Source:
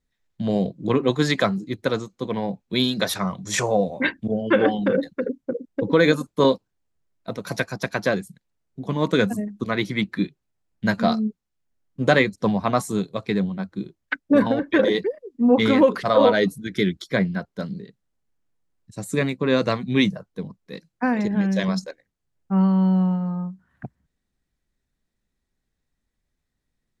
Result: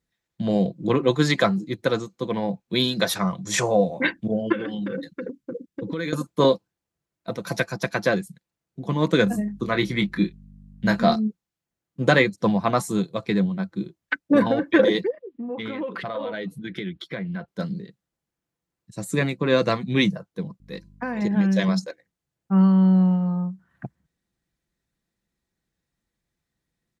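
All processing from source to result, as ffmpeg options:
-filter_complex "[0:a]asettb=1/sr,asplit=3[a][b][c];[a]atrim=end=4.524[d];[b]atrim=start=4.52:end=6.13,asetpts=PTS-STARTPTS,afade=t=in:d=0.004:c=qsin,afade=t=out:st=1.606:d=0.004:c=qsin,equalizer=f=710:t=o:w=0.95:g=-12,acompressor=threshold=-26dB:ratio=6:attack=3.2:release=140:knee=1:detection=peak[e];[c]atrim=start=6.126[f];[d][e]acrossfade=d=0.004:c1=hsin:c2=qsin[g];[g][f]acrossfade=d=0.004:c1=qsin:c2=hsin,asettb=1/sr,asplit=3[h][i][j];[h]atrim=end=9.244[k];[i]atrim=start=9.24:end=11.16,asetpts=PTS-STARTPTS,afade=t=in:d=0.004:c=qsin,afade=t=out:st=1.916:d=0.004:c=qsin,aeval=exprs='val(0)+0.00708*(sin(2*PI*50*n/s)+sin(2*PI*2*50*n/s)/2+sin(2*PI*3*50*n/s)/3+sin(2*PI*4*50*n/s)/4+sin(2*PI*5*50*n/s)/5)':c=same,asplit=2[l][m];[m]adelay=25,volume=-8dB[n];[l][n]amix=inputs=2:normalize=0,atrim=end_sample=84672[o];[j]atrim=start=11.156[p];[k][o]acrossfade=d=0.004:c1=hsin:c2=qsin[q];[q][p]acrossfade=d=0.004:c1=qsin:c2=hsin,asettb=1/sr,asplit=3[r][s][t];[r]atrim=end=15.104[u];[s]atrim=start=15.1:end=17.48,asetpts=PTS-STARTPTS,afade=t=in:d=0.004:c=qsin,afade=t=out:st=2.376:d=0.004:c=qsin,highshelf=f=4.3k:t=q:w=1.5:g=-11,acompressor=threshold=-28dB:ratio=6:attack=3.2:release=140:knee=1:detection=peak[v];[t]atrim=start=17.476[w];[u][v]acrossfade=d=0.004:c1=hsin:c2=qsin[x];[x][w]acrossfade=d=0.004:c1=qsin:c2=hsin,asettb=1/sr,asplit=3[y][z][aa];[y]atrim=end=20.604[ab];[z]atrim=start=20.6:end=21.22,asetpts=PTS-STARTPTS,afade=t=in:d=0.004:c=qsin,afade=t=out:st=0.616:d=0.004:c=qsin,bandreject=f=334.1:t=h:w=4,bandreject=f=668.2:t=h:w=4,bandreject=f=1.0023k:t=h:w=4,acompressor=threshold=-24dB:ratio=5:attack=3.2:release=140:knee=1:detection=peak,aeval=exprs='val(0)+0.00447*(sin(2*PI*50*n/s)+sin(2*PI*2*50*n/s)/2+sin(2*PI*3*50*n/s)/3+sin(2*PI*4*50*n/s)/4+sin(2*PI*5*50*n/s)/5)':c=same[ac];[aa]atrim=start=21.216[ad];[ab][ac]acrossfade=d=0.004:c1=hsin:c2=qsin[ae];[ae][ad]acrossfade=d=0.004:c1=qsin:c2=hsin,highpass=58,aecho=1:1:5.9:0.32"

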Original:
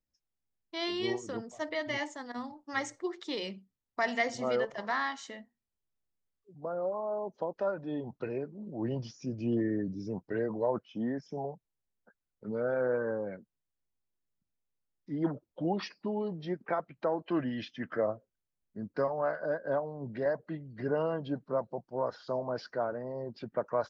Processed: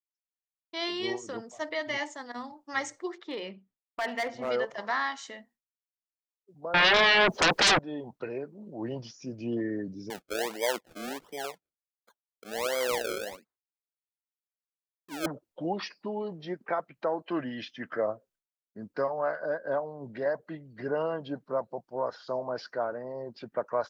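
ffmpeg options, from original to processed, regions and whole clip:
-filter_complex "[0:a]asettb=1/sr,asplit=3[a][b][c];[a]atrim=end=3.184[d];[b]atrim=start=3.18:end=4.49,asetpts=PTS-STARTPTS,afade=t=in:d=0.004:c=qsin,afade=t=out:st=1.306:d=0.004:c=qsin,lowpass=2.4k,asoftclip=type=hard:threshold=-28.5dB[e];[c]atrim=start=4.486[f];[d][e]acrossfade=d=0.004:c1=hsin:c2=qsin[g];[g][f]acrossfade=d=0.004:c1=qsin:c2=hsin,asettb=1/sr,asplit=3[h][i][j];[h]atrim=end=6.744[k];[i]atrim=start=6.74:end=7.79,asetpts=PTS-STARTPTS,afade=t=in:d=0.004:c=qsin,afade=t=out:st=1.046:d=0.004:c=qsin,lowshelf=f=130:g=8.5,aeval=exprs='0.1*sin(PI/2*8.91*val(0)/0.1)':c=same[l];[j]atrim=start=7.786[m];[k][l]acrossfade=d=0.004:c1=hsin:c2=qsin[n];[n][m]acrossfade=d=0.004:c1=qsin:c2=hsin,asettb=1/sr,asplit=3[o][p][q];[o]atrim=end=10.104[r];[p]atrim=start=10.1:end=15.26,asetpts=PTS-STARTPTS,afade=t=in:d=0.004:c=qsin,afade=t=out:st=5.156:d=0.004:c=qsin,highpass=300,acrusher=samples=32:mix=1:aa=0.000001:lfo=1:lforange=32:lforate=1.4[s];[q]atrim=start=15.256[t];[r][s]acrossfade=d=0.004:c1=hsin:c2=qsin[u];[u][t]acrossfade=d=0.004:c1=qsin:c2=hsin,agate=range=-33dB:threshold=-60dB:ratio=3:detection=peak,lowshelf=f=270:g=-9.5,volume=3dB"

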